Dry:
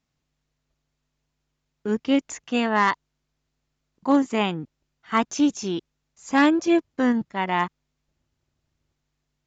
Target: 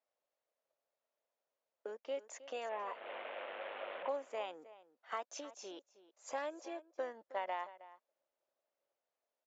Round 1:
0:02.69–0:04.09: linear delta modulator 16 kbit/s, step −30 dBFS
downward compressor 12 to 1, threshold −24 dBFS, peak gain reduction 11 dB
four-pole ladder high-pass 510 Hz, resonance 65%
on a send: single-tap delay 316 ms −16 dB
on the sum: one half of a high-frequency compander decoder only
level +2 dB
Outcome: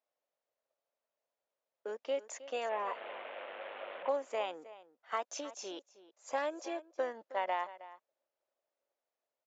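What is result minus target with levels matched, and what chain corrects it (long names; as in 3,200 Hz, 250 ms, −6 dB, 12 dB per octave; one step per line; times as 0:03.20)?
downward compressor: peak gain reduction −5.5 dB
0:02.69–0:04.09: linear delta modulator 16 kbit/s, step −30 dBFS
downward compressor 12 to 1, threshold −30 dBFS, peak gain reduction 16.5 dB
four-pole ladder high-pass 510 Hz, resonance 65%
on a send: single-tap delay 316 ms −16 dB
on the sum: one half of a high-frequency compander decoder only
level +2 dB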